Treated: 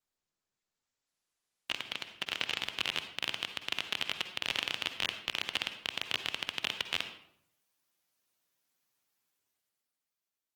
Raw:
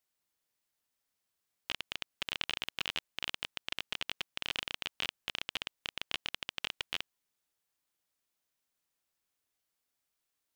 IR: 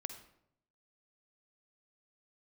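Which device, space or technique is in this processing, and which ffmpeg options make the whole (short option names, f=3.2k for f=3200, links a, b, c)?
far-field microphone of a smart speaker: -filter_complex "[1:a]atrim=start_sample=2205[a];[0:a][a]afir=irnorm=-1:irlink=0,highpass=f=87:w=0.5412,highpass=f=87:w=1.3066,dynaudnorm=f=180:g=13:m=12.5dB,volume=-6dB" -ar 48000 -c:a libopus -b:a 16k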